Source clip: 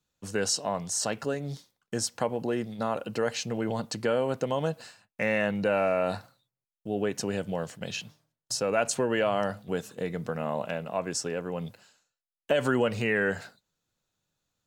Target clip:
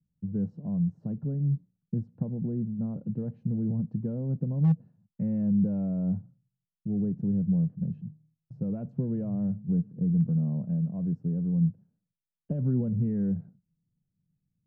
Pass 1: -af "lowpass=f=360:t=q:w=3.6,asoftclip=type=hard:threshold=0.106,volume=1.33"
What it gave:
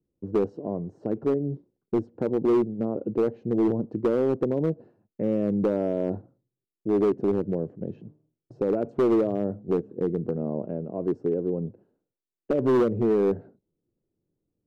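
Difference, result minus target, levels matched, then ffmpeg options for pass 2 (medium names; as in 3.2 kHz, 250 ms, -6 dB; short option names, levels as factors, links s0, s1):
500 Hz band +15.0 dB
-af "lowpass=f=170:t=q:w=3.6,asoftclip=type=hard:threshold=0.106,volume=1.33"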